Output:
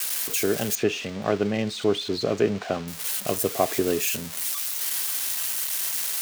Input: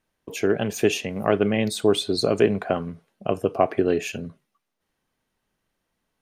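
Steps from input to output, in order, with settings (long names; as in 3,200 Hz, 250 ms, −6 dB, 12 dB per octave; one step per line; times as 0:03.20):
spike at every zero crossing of −15 dBFS
0:00.75–0:02.88: high-frequency loss of the air 160 metres
level −3 dB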